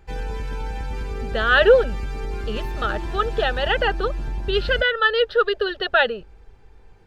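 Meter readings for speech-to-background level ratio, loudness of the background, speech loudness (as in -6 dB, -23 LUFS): 10.5 dB, -31.0 LUFS, -20.5 LUFS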